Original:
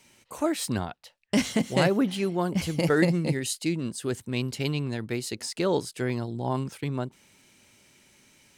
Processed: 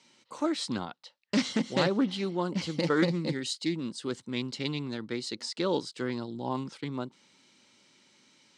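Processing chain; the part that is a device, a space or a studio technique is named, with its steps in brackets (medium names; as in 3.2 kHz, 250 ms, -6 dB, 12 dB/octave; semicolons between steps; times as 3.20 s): full-range speaker at full volume (loudspeaker Doppler distortion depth 0.17 ms; cabinet simulation 220–6900 Hz, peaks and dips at 410 Hz -5 dB, 680 Hz -8 dB, 1.7 kHz -5 dB, 2.5 kHz -6 dB, 4.1 kHz +3 dB, 6.5 kHz -4 dB)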